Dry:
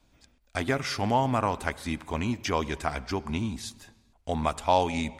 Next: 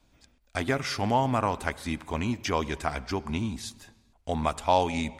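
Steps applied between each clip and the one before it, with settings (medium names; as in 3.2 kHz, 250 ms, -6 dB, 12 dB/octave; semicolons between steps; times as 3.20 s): no audible change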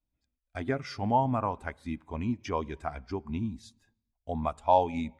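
spectral contrast expander 1.5:1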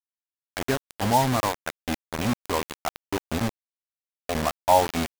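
bit crusher 5-bit; trim +4 dB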